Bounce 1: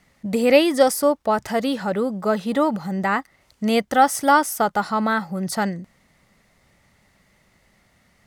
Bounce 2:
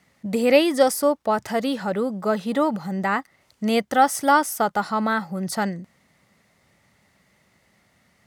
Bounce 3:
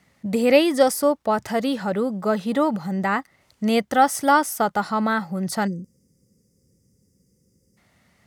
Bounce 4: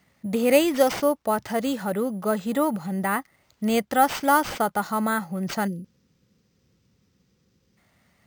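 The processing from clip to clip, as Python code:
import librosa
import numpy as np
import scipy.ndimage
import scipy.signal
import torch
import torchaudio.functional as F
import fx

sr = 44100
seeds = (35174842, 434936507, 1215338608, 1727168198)

y1 = scipy.signal.sosfilt(scipy.signal.butter(2, 82.0, 'highpass', fs=sr, output='sos'), x)
y1 = y1 * librosa.db_to_amplitude(-1.5)
y2 = fx.spec_box(y1, sr, start_s=5.67, length_s=2.1, low_hz=550.0, high_hz=4700.0, gain_db=-27)
y2 = fx.low_shelf(y2, sr, hz=180.0, db=4.0)
y3 = np.repeat(y2[::4], 4)[:len(y2)]
y3 = y3 * librosa.db_to_amplitude(-2.5)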